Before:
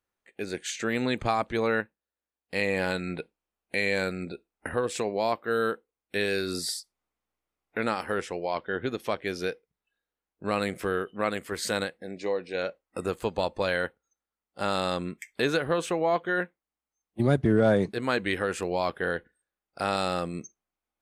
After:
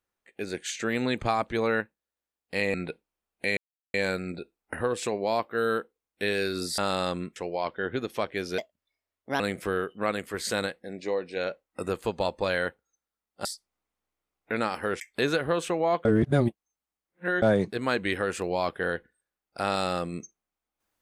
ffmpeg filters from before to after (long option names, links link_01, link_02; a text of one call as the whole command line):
ffmpeg -i in.wav -filter_complex "[0:a]asplit=11[link_01][link_02][link_03][link_04][link_05][link_06][link_07][link_08][link_09][link_10][link_11];[link_01]atrim=end=2.742[link_12];[link_02]atrim=start=3.038:end=3.87,asetpts=PTS-STARTPTS,afade=type=out:start_time=0.828:duration=0.004:curve=hsin,apad=pad_dur=0.37[link_13];[link_03]atrim=start=3.87:end=6.712,asetpts=PTS-STARTPTS,afade=type=in:duration=0.004:curve=hsin[link_14];[link_04]atrim=start=14.628:end=15.212[link_15];[link_05]atrim=start=8.258:end=9.484[link_16];[link_06]atrim=start=9.48:end=10.58,asetpts=PTS-STARTPTS,asetrate=59094,aresample=44100,atrim=end_sample=36201,asetpts=PTS-STARTPTS[link_17];[link_07]atrim=start=10.576:end=14.632[link_18];[link_08]atrim=start=6.708:end=8.262[link_19];[link_09]atrim=start=15.208:end=16.262[link_20];[link_10]atrim=start=16.258:end=17.632,asetpts=PTS-STARTPTS,areverse[link_21];[link_11]atrim=start=17.628[link_22];[link_13][link_14]concat=n=2:v=0:a=1[link_23];[link_12][link_23]acrossfade=duration=0.004:curve1=hsin:curve2=hsin[link_24];[link_24][link_15]acrossfade=duration=0.004:curve1=hsin:curve2=hsin[link_25];[link_25][link_16]acrossfade=duration=0.004:curve1=hsin:curve2=hsin[link_26];[link_26][link_17]acrossfade=duration=0.004:curve1=hsin:curve2=hsin[link_27];[link_27][link_18]acrossfade=duration=0.004:curve1=hsin:curve2=hsin[link_28];[link_28][link_19]acrossfade=duration=0.004:curve1=hsin:curve2=hsin[link_29];[link_29][link_20]acrossfade=duration=0.004:curve1=hsin:curve2=hsin[link_30];[link_30][link_21]acrossfade=duration=0.004:curve1=hsin:curve2=hsin[link_31];[link_31][link_22]acrossfade=duration=0.004:curve1=hsin:curve2=hsin" out.wav